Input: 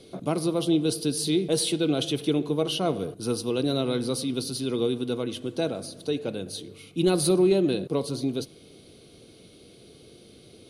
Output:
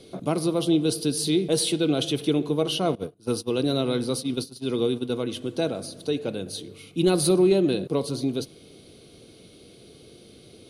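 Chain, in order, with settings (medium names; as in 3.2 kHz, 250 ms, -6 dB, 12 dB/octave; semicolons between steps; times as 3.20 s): 2.95–5.16 s: gate -29 dBFS, range -20 dB; trim +1.5 dB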